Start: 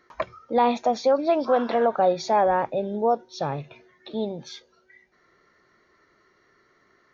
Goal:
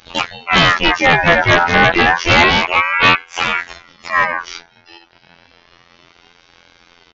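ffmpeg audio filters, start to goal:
-filter_complex "[0:a]asplit=4[s0][s1][s2][s3];[s1]asetrate=33038,aresample=44100,atempo=1.33484,volume=0.891[s4];[s2]asetrate=66075,aresample=44100,atempo=0.66742,volume=0.794[s5];[s3]asetrate=88200,aresample=44100,atempo=0.5,volume=0.794[s6];[s0][s4][s5][s6]amix=inputs=4:normalize=0,afftfilt=real='hypot(re,im)*cos(PI*b)':imag='0':win_size=2048:overlap=0.75,aresample=11025,aeval=exprs='0.422*sin(PI/2*2*val(0)/0.422)':c=same,aresample=44100,aeval=exprs='val(0)*sin(2*PI*1500*n/s+1500*0.25/0.3*sin(2*PI*0.3*n/s))':c=same,volume=1.88"

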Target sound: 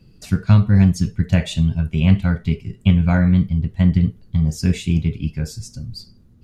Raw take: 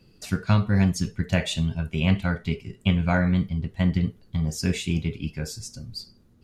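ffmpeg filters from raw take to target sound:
-af "bass=f=250:g=9,treble=f=4000:g=0"

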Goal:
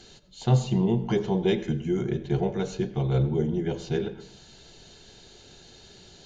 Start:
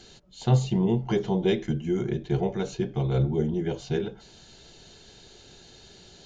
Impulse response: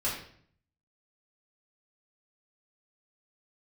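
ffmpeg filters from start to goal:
-filter_complex "[0:a]asplit=2[s0][s1];[1:a]atrim=start_sample=2205,adelay=83[s2];[s1][s2]afir=irnorm=-1:irlink=0,volume=0.0841[s3];[s0][s3]amix=inputs=2:normalize=0"

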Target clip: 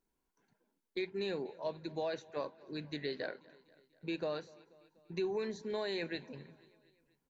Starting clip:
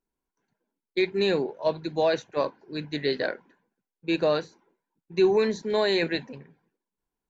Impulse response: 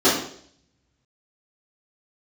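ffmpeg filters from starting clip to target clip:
-af "acompressor=threshold=0.00316:ratio=2,aecho=1:1:243|486|729|972:0.0708|0.0418|0.0246|0.0145,volume=1.26"

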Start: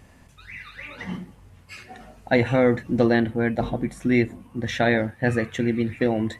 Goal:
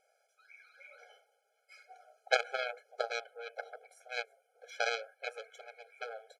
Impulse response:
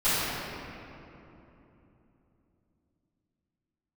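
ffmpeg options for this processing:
-af "highpass=130,aecho=1:1:1.4:0.48,aeval=exprs='0.531*(cos(1*acos(clip(val(0)/0.531,-1,1)))-cos(1*PI/2))+0.211*(cos(3*acos(clip(val(0)/0.531,-1,1)))-cos(3*PI/2))':c=same,afftfilt=real='re*eq(mod(floor(b*sr/1024/430),2),1)':imag='im*eq(mod(floor(b*sr/1024/430),2),1)':win_size=1024:overlap=0.75"

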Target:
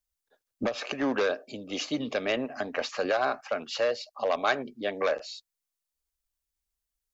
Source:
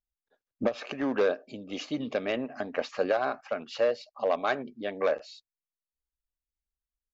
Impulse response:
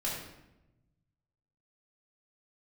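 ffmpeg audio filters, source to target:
-filter_complex "[0:a]bass=f=250:g=-7,treble=f=4000:g=6,acrossover=split=130|980[s0][s1][s2];[s0]acontrast=62[s3];[s1]alimiter=level_in=1.06:limit=0.0631:level=0:latency=1,volume=0.944[s4];[s3][s4][s2]amix=inputs=3:normalize=0,volume=1.5"

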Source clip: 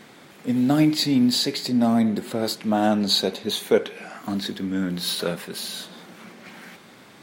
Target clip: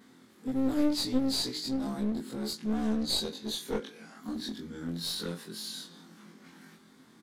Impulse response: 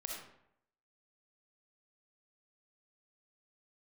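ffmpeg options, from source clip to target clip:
-filter_complex "[0:a]afftfilt=real='re':imag='-im':win_size=2048:overlap=0.75,bandreject=f=310.5:t=h:w=4,bandreject=f=621:t=h:w=4,bandreject=f=931.5:t=h:w=4,bandreject=f=1242:t=h:w=4,adynamicequalizer=threshold=0.00708:dfrequency=5100:dqfactor=0.79:tfrequency=5100:tqfactor=0.79:attack=5:release=100:ratio=0.375:range=3:mode=boostabove:tftype=bell,acrossover=split=170|8000[s0][s1][s2];[s0]alimiter=level_in=4.73:limit=0.0631:level=0:latency=1,volume=0.211[s3];[s3][s1][s2]amix=inputs=3:normalize=0,equalizer=f=100:t=o:w=0.67:g=-3,equalizer=f=250:t=o:w=0.67:g=7,equalizer=f=630:t=o:w=0.67:g=-9,equalizer=f=2500:t=o:w=0.67:g=-8,aeval=exprs='clip(val(0),-1,0.0473)':c=same,aresample=32000,aresample=44100,volume=0.501"

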